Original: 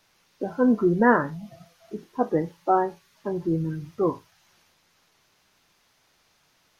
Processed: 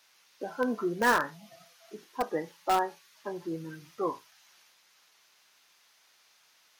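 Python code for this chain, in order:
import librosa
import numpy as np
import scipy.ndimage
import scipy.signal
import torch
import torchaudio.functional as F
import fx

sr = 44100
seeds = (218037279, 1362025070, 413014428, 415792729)

p1 = fx.highpass(x, sr, hz=1400.0, slope=6)
p2 = (np.mod(10.0 ** (20.5 / 20.0) * p1 + 1.0, 2.0) - 1.0) / 10.0 ** (20.5 / 20.0)
y = p1 + (p2 * 10.0 ** (-8.5 / 20.0))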